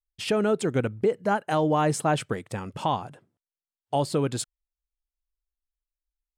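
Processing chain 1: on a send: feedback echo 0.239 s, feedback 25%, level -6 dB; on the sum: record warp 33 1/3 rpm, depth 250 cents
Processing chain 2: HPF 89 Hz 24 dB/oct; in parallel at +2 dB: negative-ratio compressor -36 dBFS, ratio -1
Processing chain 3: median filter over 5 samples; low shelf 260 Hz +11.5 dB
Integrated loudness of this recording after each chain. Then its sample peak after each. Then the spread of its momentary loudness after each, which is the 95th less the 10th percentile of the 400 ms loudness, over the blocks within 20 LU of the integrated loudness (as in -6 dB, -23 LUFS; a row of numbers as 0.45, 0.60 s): -26.0, -24.0, -22.5 LUFS; -11.0, -9.5, -7.0 dBFS; 12, 7, 8 LU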